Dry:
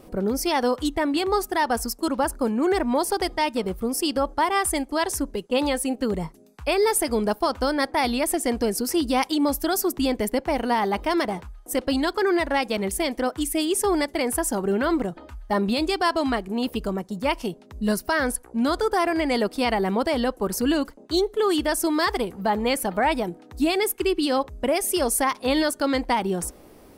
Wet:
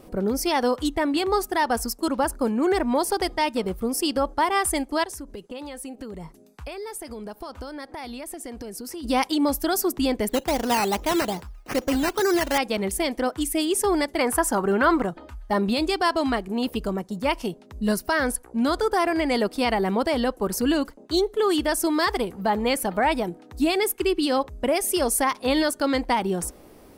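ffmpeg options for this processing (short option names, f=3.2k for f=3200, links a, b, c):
-filter_complex "[0:a]asplit=3[a][b][c];[a]afade=t=out:st=5.03:d=0.02[d];[b]acompressor=threshold=-33dB:ratio=6:attack=3.2:release=140:knee=1:detection=peak,afade=t=in:st=5.03:d=0.02,afade=t=out:st=9.03:d=0.02[e];[c]afade=t=in:st=9.03:d=0.02[f];[d][e][f]amix=inputs=3:normalize=0,asettb=1/sr,asplit=3[g][h][i];[g]atrim=end=10.294[j];[h]atrim=start=10.29:end=12.58,asetpts=PTS-STARTPTS,afade=t=in:d=0.004:c=qsin,afade=t=out:st=2.286:d=0.004:c=qsin,acrusher=samples=10:mix=1:aa=0.000001:lfo=1:lforange=6:lforate=2.4[k];[i]atrim=start=12.576[l];[j][k]acrossfade=d=0.004:c1=hsin:c2=qsin[m];[m][l]acrossfade=d=0.004:c1=qsin:c2=hsin,asettb=1/sr,asplit=3[n][o][p];[n]atrim=end=14.194[q];[o]atrim=start=14.19:end=15.11,asetpts=PTS-STARTPTS,afade=t=in:d=0.004:c=qsin,afade=t=out:st=0.916:d=0.004:c=qsin,equalizer=f=1.2k:w=1.1:g=9[r];[p]atrim=start=15.106[s];[q][r]acrossfade=d=0.004:c1=hsin:c2=qsin[t];[t][s]acrossfade=d=0.004:c1=qsin:c2=hsin"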